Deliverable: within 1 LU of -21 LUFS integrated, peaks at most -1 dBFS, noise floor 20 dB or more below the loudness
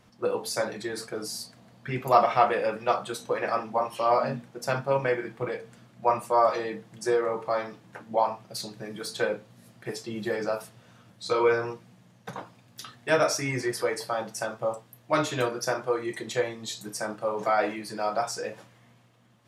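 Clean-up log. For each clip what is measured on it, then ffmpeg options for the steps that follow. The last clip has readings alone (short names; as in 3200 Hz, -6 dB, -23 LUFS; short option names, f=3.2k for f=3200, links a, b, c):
loudness -28.5 LUFS; peak -5.0 dBFS; loudness target -21.0 LUFS
-> -af "volume=7.5dB,alimiter=limit=-1dB:level=0:latency=1"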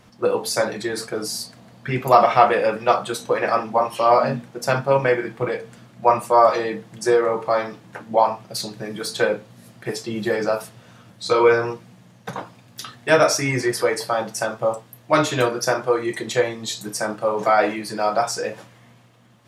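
loudness -21.0 LUFS; peak -1.0 dBFS; noise floor -51 dBFS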